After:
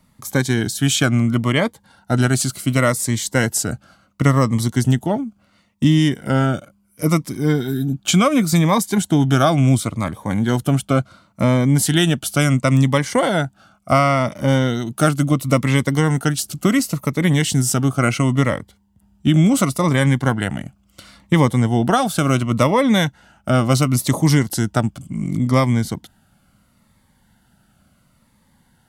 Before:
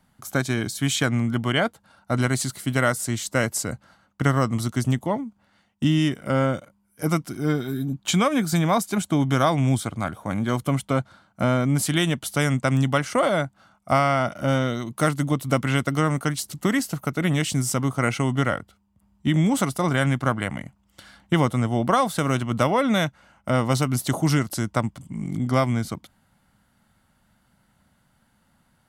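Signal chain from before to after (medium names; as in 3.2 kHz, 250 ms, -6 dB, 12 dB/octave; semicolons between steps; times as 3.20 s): Shepard-style phaser falling 0.71 Hz; trim +6.5 dB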